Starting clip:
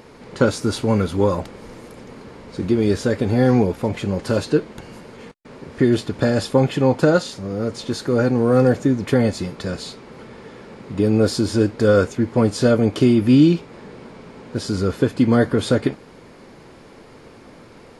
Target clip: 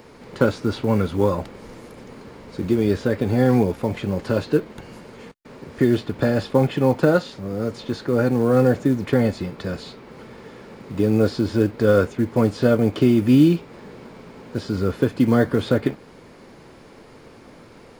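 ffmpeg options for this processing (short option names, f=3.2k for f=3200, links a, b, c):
-filter_complex "[0:a]acrossover=split=190|4200[a][b][c];[c]acompressor=threshold=-51dB:ratio=6[d];[a][b][d]amix=inputs=3:normalize=0,acrusher=bits=8:mode=log:mix=0:aa=0.000001,volume=-1.5dB"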